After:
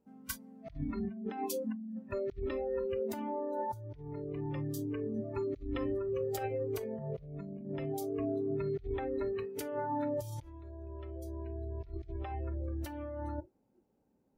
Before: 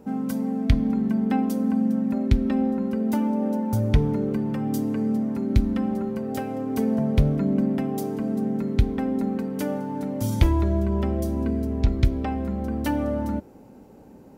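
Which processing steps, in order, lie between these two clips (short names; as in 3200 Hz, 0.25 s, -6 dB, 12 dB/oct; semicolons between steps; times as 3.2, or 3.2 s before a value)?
spectral noise reduction 29 dB; negative-ratio compressor -35 dBFS, ratio -1; gain -4.5 dB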